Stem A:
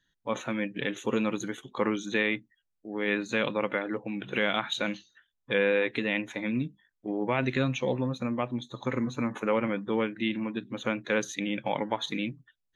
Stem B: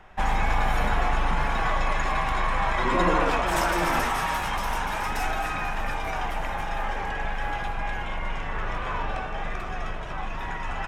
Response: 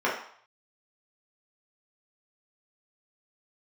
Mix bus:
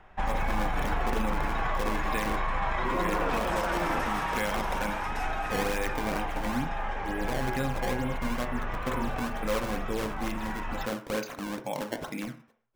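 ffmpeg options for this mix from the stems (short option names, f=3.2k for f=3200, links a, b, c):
-filter_complex "[0:a]bass=f=250:g=5,treble=f=4k:g=4,acrusher=samples=20:mix=1:aa=0.000001:lfo=1:lforange=32:lforate=2.2,volume=-6.5dB,asplit=2[a][b];[b]volume=-18dB[c];[1:a]highshelf=f=4.4k:g=-8.5,volume=-3.5dB[d];[2:a]atrim=start_sample=2205[e];[c][e]afir=irnorm=-1:irlink=0[f];[a][d][f]amix=inputs=3:normalize=0,alimiter=limit=-19dB:level=0:latency=1:release=33"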